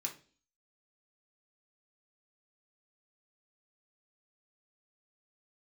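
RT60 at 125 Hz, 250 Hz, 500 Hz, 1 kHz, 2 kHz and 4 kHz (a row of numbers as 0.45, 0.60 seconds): 0.45, 0.55, 0.45, 0.35, 0.40, 0.45 seconds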